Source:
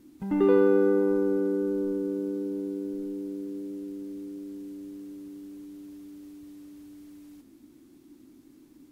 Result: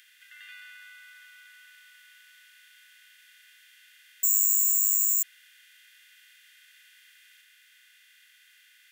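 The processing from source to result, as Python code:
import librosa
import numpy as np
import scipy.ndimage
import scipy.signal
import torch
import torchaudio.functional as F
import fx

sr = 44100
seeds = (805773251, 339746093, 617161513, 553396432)

y = fx.bin_compress(x, sr, power=0.4)
y = fx.resample_bad(y, sr, factor=6, down='filtered', up='zero_stuff', at=(4.23, 5.23))
y = scipy.signal.sosfilt(scipy.signal.butter(12, 1600.0, 'highpass', fs=sr, output='sos'), y)
y = fx.small_body(y, sr, hz=(3200.0,), ring_ms=45, db=14)
y = y * librosa.db_to_amplitude(-1.5)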